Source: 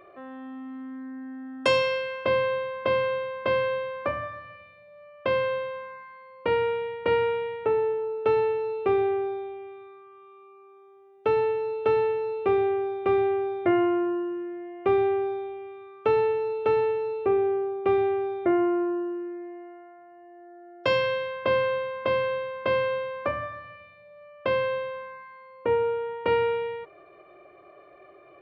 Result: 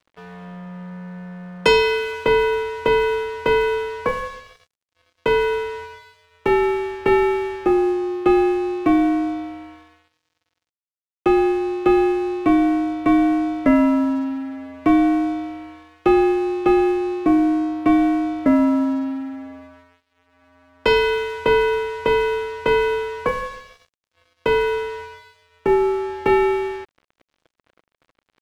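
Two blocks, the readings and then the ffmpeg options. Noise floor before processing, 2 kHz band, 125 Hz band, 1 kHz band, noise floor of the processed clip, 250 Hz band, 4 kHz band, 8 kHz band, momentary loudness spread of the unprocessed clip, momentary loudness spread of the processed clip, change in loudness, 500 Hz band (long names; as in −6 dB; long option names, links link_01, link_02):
−52 dBFS, +7.0 dB, +4.5 dB, +6.5 dB, −84 dBFS, +13.5 dB, +7.0 dB, can't be measured, 15 LU, 16 LU, +7.0 dB, +4.0 dB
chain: -af "afreqshift=-81,aeval=exprs='sgn(val(0))*max(abs(val(0))-0.00562,0)':channel_layout=same,volume=7.5dB"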